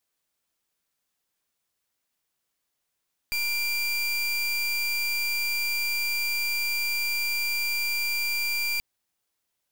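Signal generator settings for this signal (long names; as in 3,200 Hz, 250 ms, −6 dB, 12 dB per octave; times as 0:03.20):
pulse wave 2,370 Hz, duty 29% −27 dBFS 5.48 s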